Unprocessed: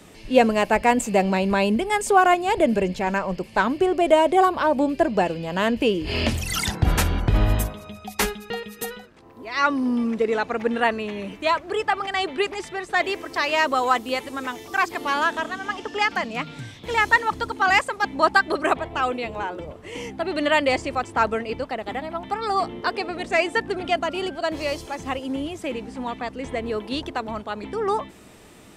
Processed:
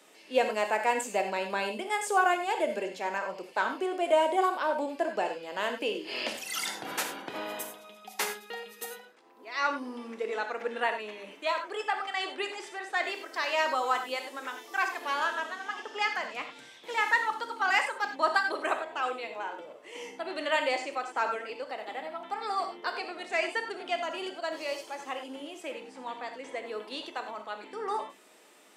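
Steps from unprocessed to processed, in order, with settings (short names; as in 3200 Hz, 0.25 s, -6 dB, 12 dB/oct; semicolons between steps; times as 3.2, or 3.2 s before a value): Bessel high-pass 440 Hz, order 4; non-linear reverb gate 0.12 s flat, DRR 5 dB; gain -8 dB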